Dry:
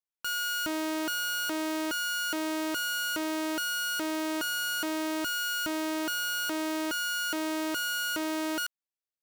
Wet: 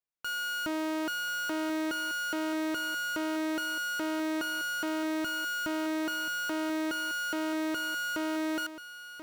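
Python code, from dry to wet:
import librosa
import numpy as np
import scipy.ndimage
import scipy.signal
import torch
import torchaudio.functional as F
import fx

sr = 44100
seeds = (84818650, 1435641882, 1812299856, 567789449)

y = fx.high_shelf(x, sr, hz=3400.0, db=-8.5)
y = y + 10.0 ** (-12.0 / 20.0) * np.pad(y, (int(1034 * sr / 1000.0), 0))[:len(y)]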